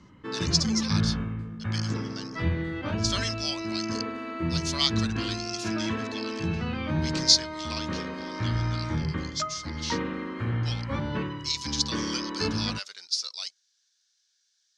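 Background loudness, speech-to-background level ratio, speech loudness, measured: −31.0 LKFS, 1.0 dB, −30.0 LKFS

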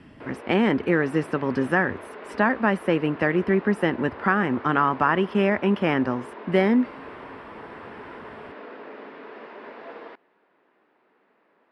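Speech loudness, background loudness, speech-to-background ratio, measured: −23.0 LKFS, −40.5 LKFS, 17.5 dB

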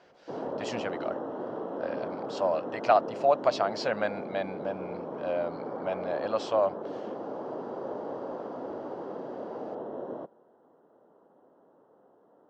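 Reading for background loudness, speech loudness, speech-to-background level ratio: −37.5 LKFS, −30.5 LKFS, 7.0 dB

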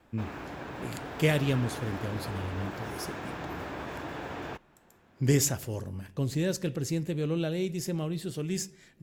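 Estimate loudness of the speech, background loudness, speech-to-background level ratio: −31.5 LKFS, −39.0 LKFS, 7.5 dB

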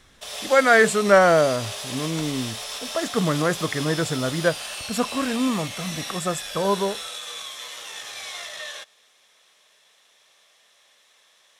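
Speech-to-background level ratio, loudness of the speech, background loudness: 10.0 dB, −22.0 LKFS, −32.0 LKFS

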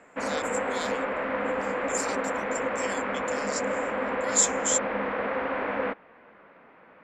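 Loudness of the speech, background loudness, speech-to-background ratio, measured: −30.5 LKFS, −29.5 LKFS, −1.0 dB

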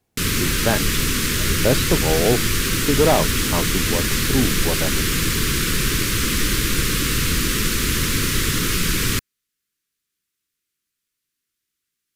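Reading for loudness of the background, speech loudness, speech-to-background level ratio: −20.0 LKFS, −23.5 LKFS, −3.5 dB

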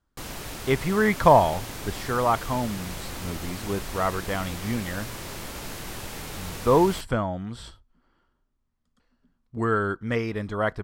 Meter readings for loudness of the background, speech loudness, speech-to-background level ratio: −36.0 LKFS, −25.0 LKFS, 11.0 dB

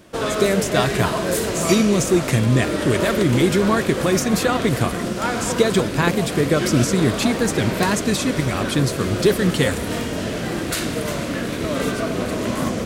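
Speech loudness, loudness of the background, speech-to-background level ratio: −20.5 LKFS, −24.0 LKFS, 3.5 dB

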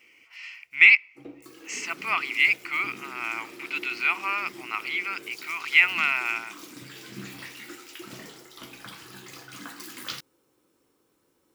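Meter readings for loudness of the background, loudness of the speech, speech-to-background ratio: −42.5 LKFS, −23.0 LKFS, 19.5 dB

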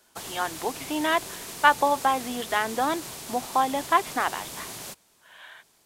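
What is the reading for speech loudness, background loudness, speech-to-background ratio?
−26.0 LKFS, −36.5 LKFS, 10.5 dB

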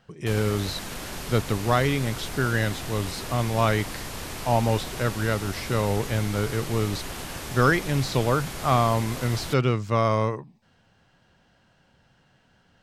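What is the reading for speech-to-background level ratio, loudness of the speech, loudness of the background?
9.5 dB, −25.5 LKFS, −35.0 LKFS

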